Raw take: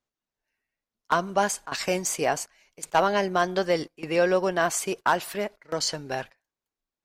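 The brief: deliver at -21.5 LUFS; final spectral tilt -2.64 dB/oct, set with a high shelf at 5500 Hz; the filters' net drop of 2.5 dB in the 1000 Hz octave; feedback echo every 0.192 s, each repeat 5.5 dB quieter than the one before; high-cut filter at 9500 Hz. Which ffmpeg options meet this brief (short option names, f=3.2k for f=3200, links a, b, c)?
-af "lowpass=9.5k,equalizer=f=1k:t=o:g=-3.5,highshelf=f=5.5k:g=5.5,aecho=1:1:192|384|576|768|960|1152|1344:0.531|0.281|0.149|0.079|0.0419|0.0222|0.0118,volume=4dB"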